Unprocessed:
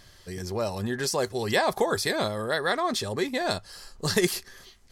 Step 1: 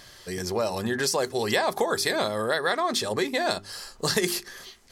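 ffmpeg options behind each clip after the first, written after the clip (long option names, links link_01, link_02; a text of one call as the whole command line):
ffmpeg -i in.wav -af "lowshelf=frequency=120:gain=-12,bandreject=frequency=50:width_type=h:width=6,bandreject=frequency=100:width_type=h:width=6,bandreject=frequency=150:width_type=h:width=6,bandreject=frequency=200:width_type=h:width=6,bandreject=frequency=250:width_type=h:width=6,bandreject=frequency=300:width_type=h:width=6,bandreject=frequency=350:width_type=h:width=6,bandreject=frequency=400:width_type=h:width=6,acompressor=threshold=-30dB:ratio=2.5,volume=6.5dB" out.wav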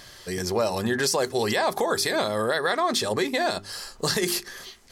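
ffmpeg -i in.wav -af "alimiter=limit=-16dB:level=0:latency=1:release=42,volume=2.5dB" out.wav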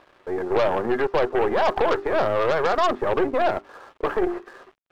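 ffmpeg -i in.wav -af "asuperpass=centerf=640:order=8:qfactor=0.56,aeval=exprs='sgn(val(0))*max(abs(val(0))-0.00158,0)':channel_layout=same,aeval=exprs='0.224*(cos(1*acos(clip(val(0)/0.224,-1,1)))-cos(1*PI/2))+0.0355*(cos(5*acos(clip(val(0)/0.224,-1,1)))-cos(5*PI/2))+0.0316*(cos(8*acos(clip(val(0)/0.224,-1,1)))-cos(8*PI/2))':channel_layout=same,volume=1.5dB" out.wav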